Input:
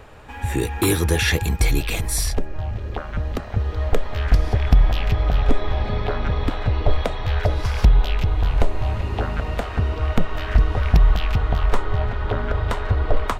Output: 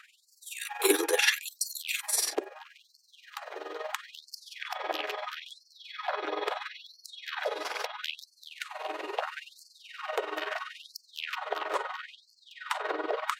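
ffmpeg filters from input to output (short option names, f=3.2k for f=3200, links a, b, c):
-af "tremolo=f=21:d=0.71,aphaser=in_gain=1:out_gain=1:delay=2.8:decay=0.2:speed=0.62:type=sinusoidal,afftfilt=real='re*gte(b*sr/1024,270*pow(4300/270,0.5+0.5*sin(2*PI*0.75*pts/sr)))':imag='im*gte(b*sr/1024,270*pow(4300/270,0.5+0.5*sin(2*PI*0.75*pts/sr)))':win_size=1024:overlap=0.75"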